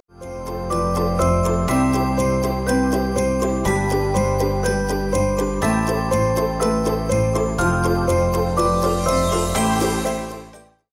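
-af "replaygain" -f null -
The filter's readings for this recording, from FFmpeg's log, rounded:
track_gain = +3.2 dB
track_peak = 0.287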